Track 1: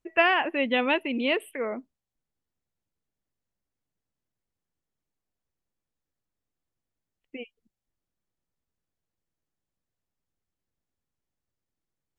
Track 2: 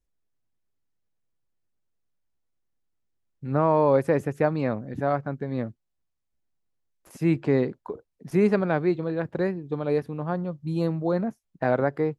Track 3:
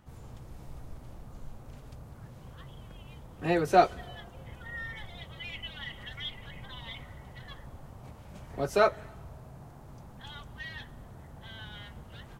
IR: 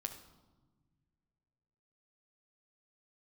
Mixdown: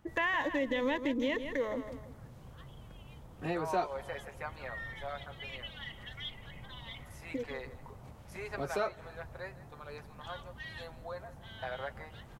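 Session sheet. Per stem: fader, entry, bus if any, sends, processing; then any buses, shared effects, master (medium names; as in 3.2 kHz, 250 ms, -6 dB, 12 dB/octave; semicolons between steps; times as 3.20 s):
+1.0 dB, 0.00 s, no send, echo send -12 dB, local Wiener filter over 15 samples; rippled EQ curve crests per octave 1.1, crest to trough 13 dB; peak limiter -18 dBFS, peak gain reduction 9 dB
-9.0 dB, 0.00 s, no send, echo send -17 dB, Bessel high-pass 930 Hz, order 4; comb 7.5 ms
-3.5 dB, 0.00 s, no send, no echo send, none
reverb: none
echo: feedback delay 160 ms, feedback 32%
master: compression 2:1, threshold -34 dBFS, peak gain reduction 9 dB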